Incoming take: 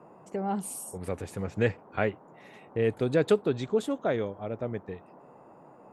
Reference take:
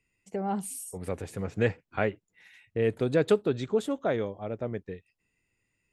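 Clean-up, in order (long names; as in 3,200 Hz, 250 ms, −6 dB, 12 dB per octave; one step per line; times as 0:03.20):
noise reduction from a noise print 25 dB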